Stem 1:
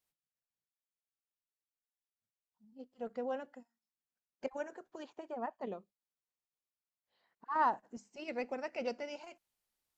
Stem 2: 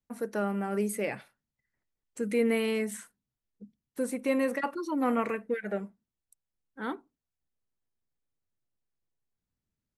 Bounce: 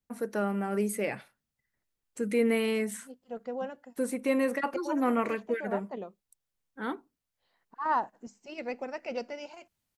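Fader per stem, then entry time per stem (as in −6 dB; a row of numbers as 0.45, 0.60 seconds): +2.5, +0.5 decibels; 0.30, 0.00 seconds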